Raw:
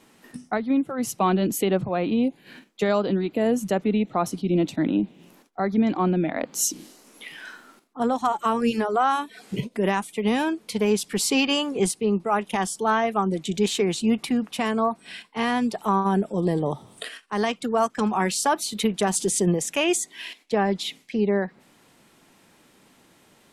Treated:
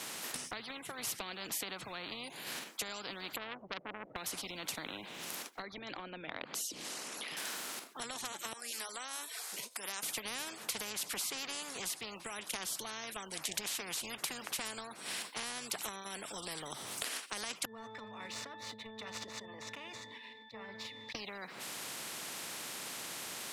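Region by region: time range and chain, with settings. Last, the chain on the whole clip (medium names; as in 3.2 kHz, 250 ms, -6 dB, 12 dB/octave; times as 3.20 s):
3.36–4.16 s: four-pole ladder low-pass 670 Hz, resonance 60% + transformer saturation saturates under 1.2 kHz
5.62–7.37 s: resonances exaggerated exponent 1.5 + distance through air 53 m
8.53–10.03 s: high-pass 1.3 kHz + peaking EQ 2.7 kHz -13.5 dB 1.6 oct + three bands expanded up and down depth 40%
17.65–21.15 s: median filter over 5 samples + pitch-class resonator A, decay 0.4 s + decay stretcher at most 35 dB/s
whole clip: high-pass 710 Hz 6 dB/octave; compression, threshold -35 dBFS; spectrum-flattening compressor 4:1; trim +1 dB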